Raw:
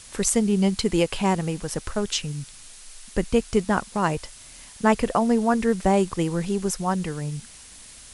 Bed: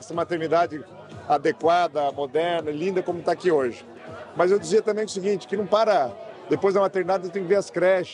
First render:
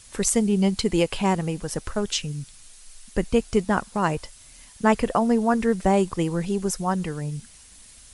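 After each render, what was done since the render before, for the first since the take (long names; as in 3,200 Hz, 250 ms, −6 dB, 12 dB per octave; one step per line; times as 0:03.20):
broadband denoise 6 dB, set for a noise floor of −46 dBFS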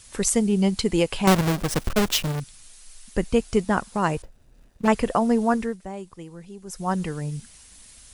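0:01.27–0:02.40: each half-wave held at its own peak
0:04.22–0:04.88: running median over 41 samples
0:05.52–0:06.92: duck −15.5 dB, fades 0.26 s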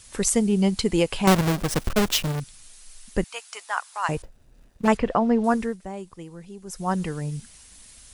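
0:03.24–0:04.09: high-pass filter 860 Hz 24 dB per octave
0:04.97–0:05.44: low-pass filter 3,200 Hz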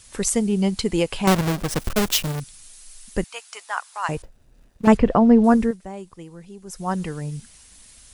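0:01.79–0:03.26: high-shelf EQ 6,100 Hz +5.5 dB
0:04.87–0:05.71: low-shelf EQ 460 Hz +10 dB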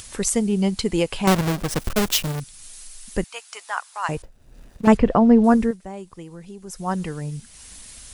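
upward compression, threshold −33 dBFS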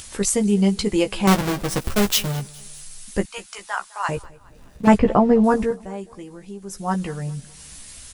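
double-tracking delay 15 ms −5 dB
repeating echo 206 ms, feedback 45%, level −22.5 dB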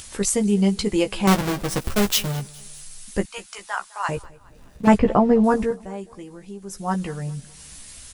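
level −1 dB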